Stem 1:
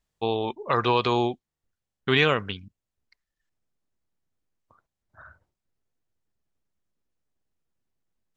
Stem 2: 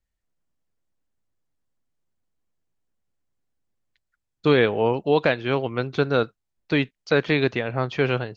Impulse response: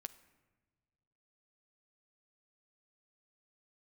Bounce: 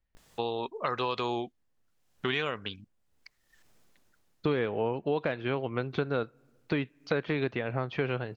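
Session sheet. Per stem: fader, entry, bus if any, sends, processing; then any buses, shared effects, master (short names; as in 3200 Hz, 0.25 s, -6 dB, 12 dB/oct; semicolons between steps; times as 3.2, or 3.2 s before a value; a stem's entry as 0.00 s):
-0.5 dB, 0.15 s, no send, upward compressor, threshold -40 dBFS; vibrato 0.43 Hz 88 cents; low shelf 150 Hz -7.5 dB; auto duck -10 dB, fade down 0.65 s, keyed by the second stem
+0.5 dB, 0.00 s, send -17 dB, de-esser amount 75%; LPF 3500 Hz 12 dB/oct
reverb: on, pre-delay 8 ms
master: compressor 3:1, threshold -29 dBFS, peak gain reduction 12.5 dB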